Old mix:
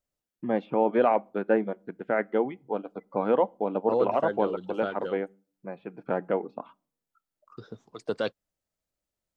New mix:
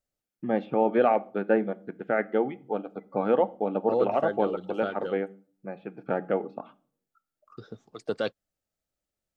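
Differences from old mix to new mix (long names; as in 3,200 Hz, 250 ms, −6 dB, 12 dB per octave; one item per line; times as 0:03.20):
first voice: send +10.5 dB
master: add Butterworth band-reject 990 Hz, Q 7.7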